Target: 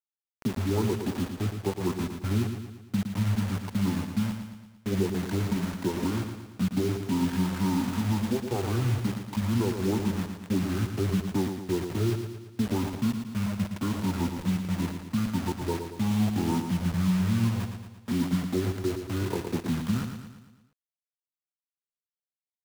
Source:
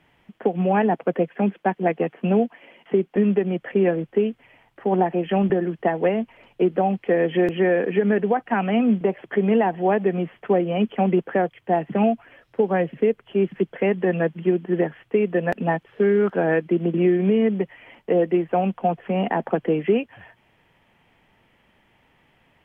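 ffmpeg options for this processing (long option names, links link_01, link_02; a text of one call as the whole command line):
ffmpeg -i in.wav -filter_complex "[0:a]bandreject=frequency=132:width_type=h:width=4,bandreject=frequency=264:width_type=h:width=4,bandreject=frequency=396:width_type=h:width=4,bandreject=frequency=528:width_type=h:width=4,bandreject=frequency=660:width_type=h:width=4,bandreject=frequency=792:width_type=h:width=4,bandreject=frequency=924:width_type=h:width=4,bandreject=frequency=1056:width_type=h:width=4,bandreject=frequency=1188:width_type=h:width=4,bandreject=frequency=1320:width_type=h:width=4,bandreject=frequency=1452:width_type=h:width=4,bandreject=frequency=1584:width_type=h:width=4,bandreject=frequency=1716:width_type=h:width=4,bandreject=frequency=1848:width_type=h:width=4,bandreject=frequency=1980:width_type=h:width=4,bandreject=frequency=2112:width_type=h:width=4,bandreject=frequency=2244:width_type=h:width=4,bandreject=frequency=2376:width_type=h:width=4,bandreject=frequency=2508:width_type=h:width=4,bandreject=frequency=2640:width_type=h:width=4,bandreject=frequency=2772:width_type=h:width=4,bandreject=frequency=2904:width_type=h:width=4,bandreject=frequency=3036:width_type=h:width=4,bandreject=frequency=3168:width_type=h:width=4,bandreject=frequency=3300:width_type=h:width=4,bandreject=frequency=3432:width_type=h:width=4,bandreject=frequency=3564:width_type=h:width=4,bandreject=frequency=3696:width_type=h:width=4,acrossover=split=120|400|990[link_01][link_02][link_03][link_04];[link_01]alimiter=level_in=18dB:limit=-24dB:level=0:latency=1:release=197,volume=-18dB[link_05];[link_05][link_02][link_03][link_04]amix=inputs=4:normalize=0,asetrate=22696,aresample=44100,atempo=1.94306,acrusher=bits=4:mix=0:aa=0.000001,aecho=1:1:114|228|342|456|570|684:0.422|0.219|0.114|0.0593|0.0308|0.016,volume=-7.5dB" out.wav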